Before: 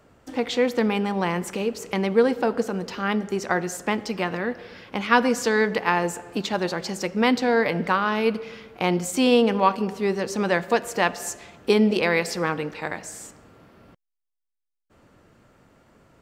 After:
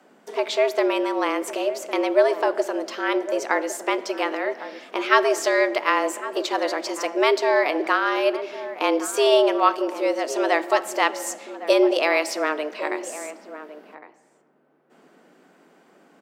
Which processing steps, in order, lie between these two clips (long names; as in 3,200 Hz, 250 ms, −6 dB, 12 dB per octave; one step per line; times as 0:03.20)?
slap from a distant wall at 190 metres, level −13 dB
frequency shifter +150 Hz
level +1 dB